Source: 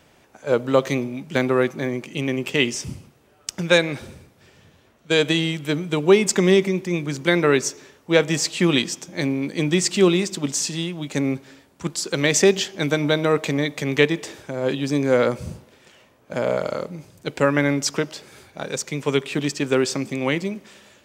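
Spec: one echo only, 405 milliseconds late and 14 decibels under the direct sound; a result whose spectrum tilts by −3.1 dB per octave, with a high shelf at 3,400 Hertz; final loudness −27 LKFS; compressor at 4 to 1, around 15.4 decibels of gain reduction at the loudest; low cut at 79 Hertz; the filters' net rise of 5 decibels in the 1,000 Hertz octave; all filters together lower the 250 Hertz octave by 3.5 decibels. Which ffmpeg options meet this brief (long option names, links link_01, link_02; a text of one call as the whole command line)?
ffmpeg -i in.wav -af "highpass=79,equalizer=frequency=250:width_type=o:gain=-5.5,equalizer=frequency=1000:width_type=o:gain=6,highshelf=frequency=3400:gain=6.5,acompressor=threshold=-29dB:ratio=4,aecho=1:1:405:0.2,volume=5dB" out.wav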